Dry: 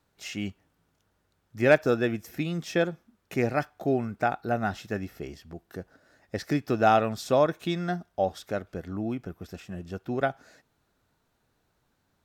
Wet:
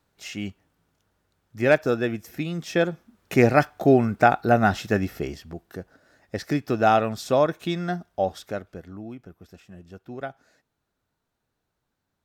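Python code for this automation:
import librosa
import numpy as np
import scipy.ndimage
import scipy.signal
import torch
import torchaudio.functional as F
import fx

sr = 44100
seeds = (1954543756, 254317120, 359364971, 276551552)

y = fx.gain(x, sr, db=fx.line((2.57, 1.0), (3.39, 9.0), (5.15, 9.0), (5.8, 2.0), (8.4, 2.0), (9.06, -7.0)))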